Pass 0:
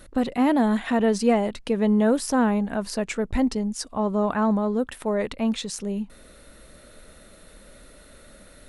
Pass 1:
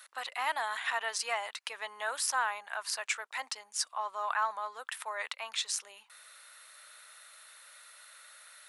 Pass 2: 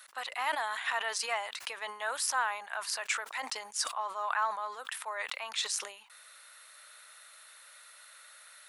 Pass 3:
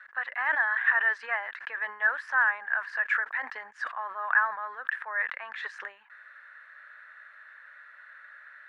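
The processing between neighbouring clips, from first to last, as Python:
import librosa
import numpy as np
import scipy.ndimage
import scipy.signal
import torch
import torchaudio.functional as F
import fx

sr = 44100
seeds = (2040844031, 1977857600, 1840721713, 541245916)

y1 = scipy.signal.sosfilt(scipy.signal.butter(4, 990.0, 'highpass', fs=sr, output='sos'), x)
y2 = fx.sustainer(y1, sr, db_per_s=96.0)
y3 = fx.lowpass_res(y2, sr, hz=1700.0, q=9.9)
y3 = y3 * librosa.db_to_amplitude(-3.5)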